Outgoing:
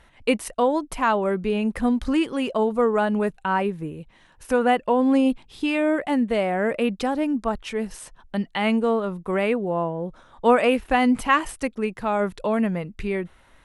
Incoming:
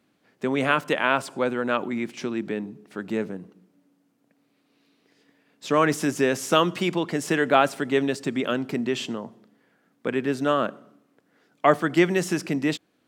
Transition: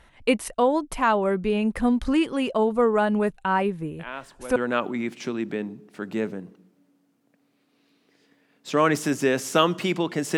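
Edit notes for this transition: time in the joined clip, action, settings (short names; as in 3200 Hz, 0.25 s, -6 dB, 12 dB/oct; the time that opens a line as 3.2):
outgoing
3.99 add incoming from 0.96 s 0.57 s -14 dB
4.56 switch to incoming from 1.53 s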